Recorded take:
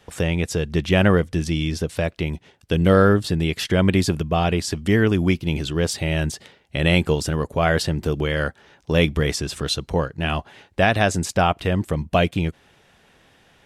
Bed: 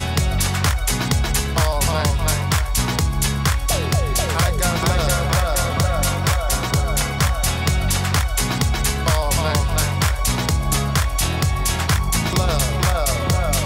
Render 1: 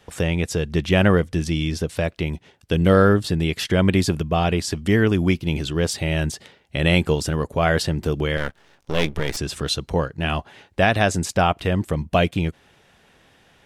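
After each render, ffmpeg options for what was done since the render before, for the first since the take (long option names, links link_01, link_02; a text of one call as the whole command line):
ffmpeg -i in.wav -filter_complex "[0:a]asettb=1/sr,asplit=3[link_01][link_02][link_03];[link_01]atrim=end=8.374[link_04];[link_02]atrim=start=8.37:end=9.37,asetpts=PTS-STARTPTS,afade=type=in:duration=0.004:curve=qsin,afade=type=out:start_time=0.996:duration=0.004:curve=qsin,aeval=exprs='max(val(0),0)':channel_layout=same[link_05];[link_03]atrim=start=9.366[link_06];[link_04][link_05]acrossfade=duration=0.004:curve1=hsin:curve2=qsin[link_07];[link_07][link_06]acrossfade=duration=0.004:curve1=qsin:curve2=hsin" out.wav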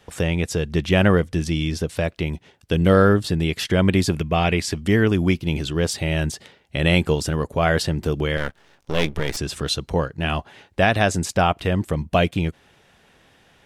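ffmpeg -i in.wav -filter_complex "[0:a]asettb=1/sr,asplit=3[link_01][link_02][link_03];[link_01]atrim=end=4.144[link_04];[link_02]atrim=start=4.14:end=4.72,asetpts=PTS-STARTPTS,afade=type=in:duration=0.004:curve=qsin,afade=type=out:start_time=0.576:duration=0.004:curve=qsin,equalizer=frequency=2200:width_type=o:width=0.54:gain=8.5[link_05];[link_03]atrim=start=4.716[link_06];[link_04][link_05]acrossfade=duration=0.004:curve1=hsin:curve2=qsin[link_07];[link_07][link_06]acrossfade=duration=0.004:curve1=qsin:curve2=hsin" out.wav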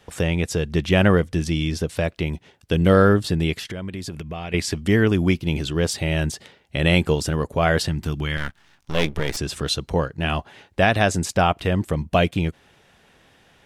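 ffmpeg -i in.wav -filter_complex "[0:a]asettb=1/sr,asplit=3[link_01][link_02][link_03];[link_01]atrim=end=3.544[link_04];[link_02]atrim=start=3.54:end=4.54,asetpts=PTS-STARTPTS,afade=type=in:duration=0.004:curve=qsin,afade=type=out:start_time=0.996:duration=0.004:curve=qsin,acompressor=threshold=-30dB:ratio=4:attack=3.2:release=140:knee=1:detection=peak[link_05];[link_03]atrim=start=4.536[link_06];[link_04][link_05]acrossfade=duration=0.004:curve1=hsin:curve2=qsin[link_07];[link_07][link_06]acrossfade=duration=0.004:curve1=qsin:curve2=hsin,asettb=1/sr,asplit=3[link_08][link_09][link_10];[link_08]atrim=end=7.884[link_11];[link_09]atrim=start=7.88:end=8.95,asetpts=PTS-STARTPTS,afade=type=in:duration=0.004:curve=qsin,afade=type=out:start_time=1.066:duration=0.004:curve=qsin,equalizer=frequency=490:width=1.5:gain=-13[link_12];[link_10]atrim=start=8.946[link_13];[link_11][link_12]acrossfade=duration=0.004:curve1=hsin:curve2=qsin[link_14];[link_14][link_13]acrossfade=duration=0.004:curve1=qsin:curve2=hsin" out.wav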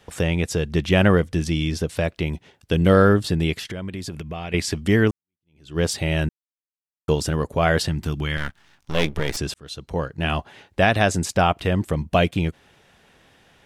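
ffmpeg -i in.wav -filter_complex "[0:a]asplit=5[link_01][link_02][link_03][link_04][link_05];[link_01]atrim=end=5.11,asetpts=PTS-STARTPTS,afade=type=out:start_time=5.106:duration=0.004:curve=hsin[link_06];[link_02]atrim=start=5.11:end=6.29,asetpts=PTS-STARTPTS,afade=type=in:duration=0.68:curve=exp,afade=type=out:start_time=1.176:duration=0.004:curve=hsin[link_07];[link_03]atrim=start=6.29:end=7.08,asetpts=PTS-STARTPTS,volume=0[link_08];[link_04]atrim=start=7.08:end=9.54,asetpts=PTS-STARTPTS,afade=type=in:duration=0.004:curve=hsin,afade=type=out:start_time=2.456:duration=0.004:curve=hsin[link_09];[link_05]atrim=start=9.54,asetpts=PTS-STARTPTS,afade=type=in:duration=0.68[link_10];[link_06][link_07][link_08][link_09][link_10]concat=n=5:v=0:a=1" out.wav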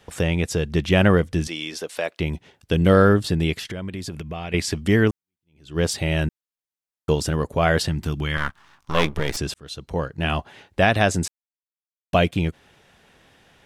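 ffmpeg -i in.wav -filter_complex "[0:a]asettb=1/sr,asplit=3[link_01][link_02][link_03];[link_01]atrim=end=1.474[link_04];[link_02]atrim=start=1.47:end=2.2,asetpts=PTS-STARTPTS,afade=type=in:duration=0.004:curve=qsin,afade=type=out:start_time=0.726:duration=0.004:curve=qsin,highpass=470[link_05];[link_03]atrim=start=2.196[link_06];[link_04][link_05]acrossfade=duration=0.004:curve1=hsin:curve2=qsin[link_07];[link_07][link_06]acrossfade=duration=0.004:curve1=qsin:curve2=hsin,asettb=1/sr,asplit=3[link_08][link_09][link_10];[link_08]atrim=end=8.344[link_11];[link_09]atrim=start=8.34:end=9.15,asetpts=PTS-STARTPTS,afade=type=in:duration=0.004:curve=qsin,afade=type=out:start_time=0.806:duration=0.004:curve=qsin,equalizer=frequency=1100:width_type=o:width=0.67:gain=11.5[link_12];[link_10]atrim=start=9.146[link_13];[link_11][link_12]acrossfade=duration=0.004:curve1=hsin:curve2=qsin[link_14];[link_14][link_13]acrossfade=duration=0.004:curve1=qsin:curve2=hsin,asplit=3[link_15][link_16][link_17];[link_15]atrim=end=11.28,asetpts=PTS-STARTPTS,afade=type=out:start_time=11.276:duration=0.004:curve=hsin[link_18];[link_16]atrim=start=11.28:end=12.13,asetpts=PTS-STARTPTS,volume=0[link_19];[link_17]atrim=start=12.13,asetpts=PTS-STARTPTS,afade=type=in:duration=0.004:curve=hsin[link_20];[link_18][link_19][link_20]concat=n=3:v=0:a=1" out.wav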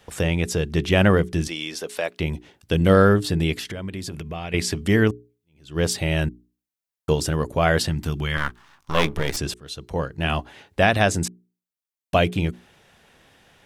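ffmpeg -i in.wav -af "highshelf=frequency=10000:gain=4.5,bandreject=frequency=60:width_type=h:width=6,bandreject=frequency=120:width_type=h:width=6,bandreject=frequency=180:width_type=h:width=6,bandreject=frequency=240:width_type=h:width=6,bandreject=frequency=300:width_type=h:width=6,bandreject=frequency=360:width_type=h:width=6,bandreject=frequency=420:width_type=h:width=6" out.wav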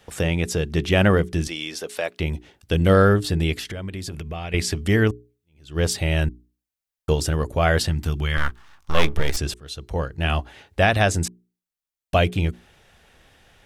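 ffmpeg -i in.wav -af "bandreject=frequency=1000:width=18,asubboost=boost=3:cutoff=86" out.wav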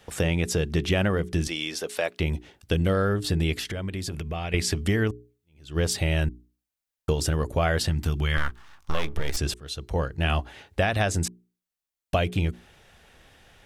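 ffmpeg -i in.wav -af "acompressor=threshold=-19dB:ratio=10" out.wav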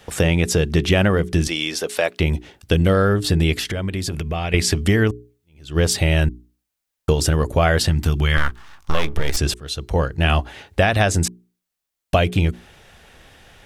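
ffmpeg -i in.wav -af "volume=7dB" out.wav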